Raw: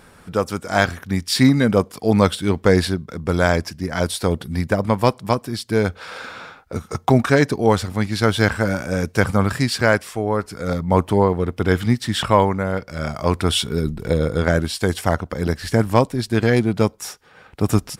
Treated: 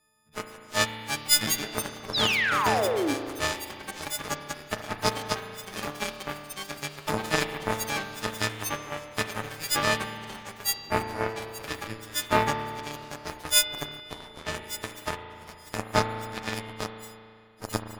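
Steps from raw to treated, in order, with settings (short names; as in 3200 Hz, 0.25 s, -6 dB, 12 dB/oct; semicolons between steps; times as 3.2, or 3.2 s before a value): frequency quantiser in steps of 6 st; in parallel at -0.5 dB: vocal rider within 5 dB 2 s; on the sum: added harmonics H 2 -14 dB, 3 -11 dB, 7 -30 dB, 8 -30 dB, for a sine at 8 dBFS; painted sound fall, 2.14–3.14, 260–4100 Hz -14 dBFS; reverb RT60 2.3 s, pre-delay 36 ms, DRR 6 dB; echoes that change speed 0.525 s, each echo +5 st, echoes 2, each echo -6 dB; gain -13 dB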